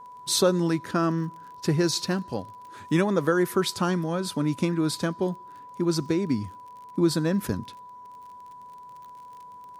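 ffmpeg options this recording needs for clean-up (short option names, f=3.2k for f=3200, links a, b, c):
-af "adeclick=t=4,bandreject=f=990:w=30"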